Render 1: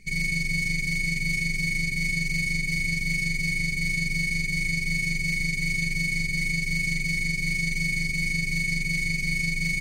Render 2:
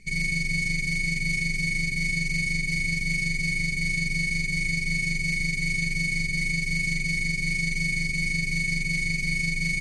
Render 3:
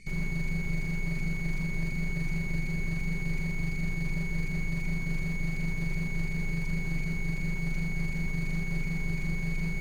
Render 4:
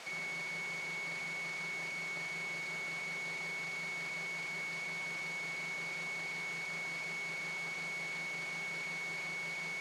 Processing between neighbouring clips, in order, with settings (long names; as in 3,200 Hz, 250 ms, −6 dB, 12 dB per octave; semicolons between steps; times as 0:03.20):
low-pass filter 11,000 Hz 24 dB per octave
slew-rate limiting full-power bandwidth 23 Hz
background noise pink −45 dBFS; band-pass filter 600–6,500 Hz